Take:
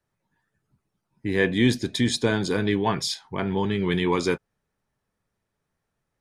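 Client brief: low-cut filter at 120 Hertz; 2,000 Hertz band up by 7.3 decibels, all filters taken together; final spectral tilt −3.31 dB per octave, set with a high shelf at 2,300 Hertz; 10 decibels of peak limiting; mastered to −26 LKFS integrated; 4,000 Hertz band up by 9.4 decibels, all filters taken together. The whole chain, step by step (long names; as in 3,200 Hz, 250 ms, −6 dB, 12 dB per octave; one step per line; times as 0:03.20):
high-pass filter 120 Hz
parametric band 2,000 Hz +4.5 dB
high-shelf EQ 2,300 Hz +7.5 dB
parametric band 4,000 Hz +3.5 dB
level −2 dB
brickwall limiter −14.5 dBFS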